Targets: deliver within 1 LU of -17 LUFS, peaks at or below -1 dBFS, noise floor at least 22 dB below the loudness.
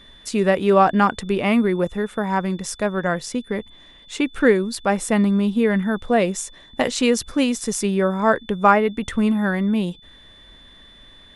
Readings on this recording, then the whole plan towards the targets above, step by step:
steady tone 3500 Hz; tone level -47 dBFS; loudness -20.5 LUFS; peak -2.0 dBFS; loudness target -17.0 LUFS
-> notch 3500 Hz, Q 30; gain +3.5 dB; limiter -1 dBFS

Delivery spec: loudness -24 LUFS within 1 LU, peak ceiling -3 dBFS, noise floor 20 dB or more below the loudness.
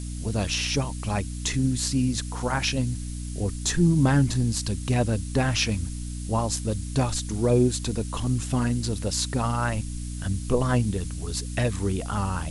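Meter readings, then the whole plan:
hum 60 Hz; harmonics up to 300 Hz; hum level -30 dBFS; noise floor -33 dBFS; noise floor target -46 dBFS; loudness -26.0 LUFS; peak -8.5 dBFS; loudness target -24.0 LUFS
-> de-hum 60 Hz, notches 5; noise print and reduce 13 dB; gain +2 dB

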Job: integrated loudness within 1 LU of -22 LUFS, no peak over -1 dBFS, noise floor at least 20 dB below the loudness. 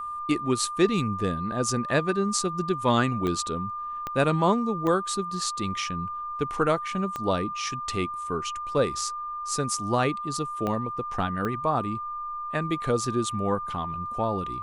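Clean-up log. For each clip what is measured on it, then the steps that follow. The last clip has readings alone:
clicks 6; steady tone 1200 Hz; tone level -31 dBFS; loudness -27.0 LUFS; peak -9.0 dBFS; loudness target -22.0 LUFS
-> de-click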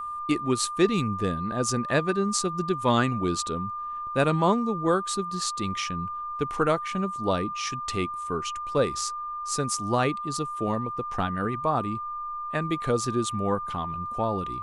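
clicks 0; steady tone 1200 Hz; tone level -31 dBFS
-> notch 1200 Hz, Q 30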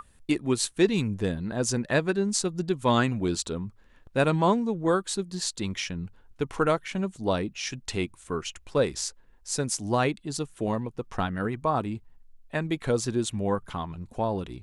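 steady tone none; loudness -28.0 LUFS; peak -8.5 dBFS; loudness target -22.0 LUFS
-> gain +6 dB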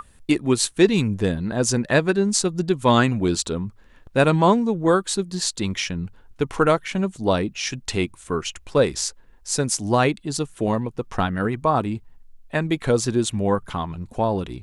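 loudness -22.0 LUFS; peak -2.5 dBFS; noise floor -51 dBFS

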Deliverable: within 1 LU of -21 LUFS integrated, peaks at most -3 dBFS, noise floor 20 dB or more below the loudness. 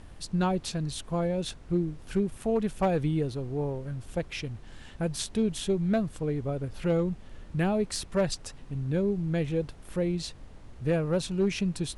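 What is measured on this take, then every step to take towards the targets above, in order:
clipped 0.3%; flat tops at -18.5 dBFS; noise floor -48 dBFS; noise floor target -50 dBFS; loudness -30.0 LUFS; peak -18.5 dBFS; loudness target -21.0 LUFS
-> clip repair -18.5 dBFS; noise print and reduce 6 dB; gain +9 dB

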